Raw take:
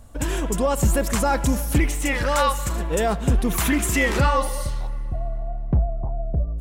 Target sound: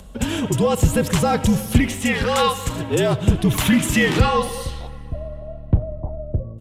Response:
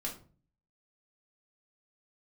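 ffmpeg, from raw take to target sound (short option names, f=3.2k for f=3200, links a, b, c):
-filter_complex "[0:a]afreqshift=-53,highpass=47,equalizer=f=3.2k:w=1.6:g=9,acompressor=mode=upward:threshold=-43dB:ratio=2.5,lowshelf=f=420:g=9.5,asplit=2[a][b];[1:a]atrim=start_sample=2205,adelay=83[c];[b][c]afir=irnorm=-1:irlink=0,volume=-21.5dB[d];[a][d]amix=inputs=2:normalize=0,aresample=32000,aresample=44100,volume=-1dB"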